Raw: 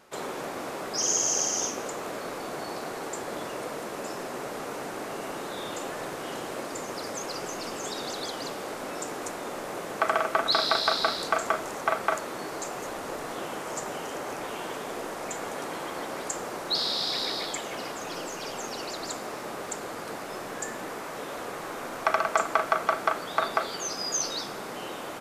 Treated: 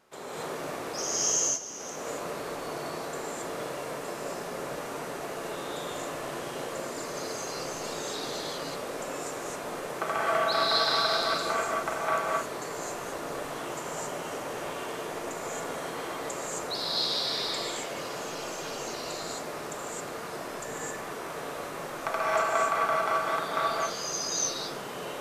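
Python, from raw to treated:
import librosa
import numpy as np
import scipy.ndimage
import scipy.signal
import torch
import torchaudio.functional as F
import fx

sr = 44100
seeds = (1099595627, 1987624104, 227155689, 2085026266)

y = fx.level_steps(x, sr, step_db=20, at=(1.3, 1.8))
y = fx.rev_gated(y, sr, seeds[0], gate_ms=290, shape='rising', drr_db=-6.5)
y = F.gain(torch.from_numpy(y), -8.0).numpy()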